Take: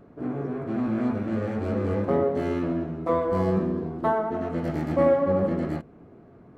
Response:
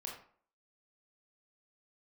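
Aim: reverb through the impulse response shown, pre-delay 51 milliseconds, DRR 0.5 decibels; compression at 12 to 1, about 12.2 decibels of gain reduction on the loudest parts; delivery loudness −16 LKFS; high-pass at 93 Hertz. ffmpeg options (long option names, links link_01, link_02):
-filter_complex "[0:a]highpass=93,acompressor=threshold=-28dB:ratio=12,asplit=2[link_01][link_02];[1:a]atrim=start_sample=2205,adelay=51[link_03];[link_02][link_03]afir=irnorm=-1:irlink=0,volume=1dB[link_04];[link_01][link_04]amix=inputs=2:normalize=0,volume=14.5dB"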